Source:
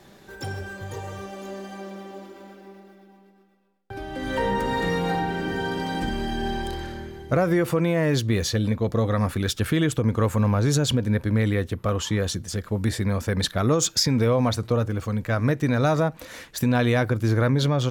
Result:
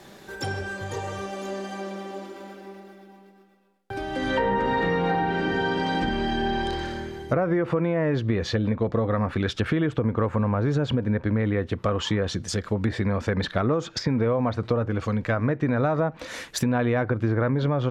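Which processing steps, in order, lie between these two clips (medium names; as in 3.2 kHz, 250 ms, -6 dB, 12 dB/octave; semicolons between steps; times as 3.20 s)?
low-pass that closes with the level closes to 1.8 kHz, closed at -19 dBFS; bass shelf 150 Hz -6.5 dB; compression, threshold -24 dBFS, peak gain reduction 6.5 dB; trim +4.5 dB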